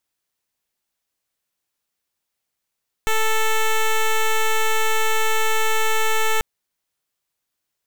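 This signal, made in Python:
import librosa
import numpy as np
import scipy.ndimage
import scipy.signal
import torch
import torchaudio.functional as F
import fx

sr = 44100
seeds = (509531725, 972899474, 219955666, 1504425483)

y = fx.pulse(sr, length_s=3.34, hz=440.0, level_db=-17.5, duty_pct=9)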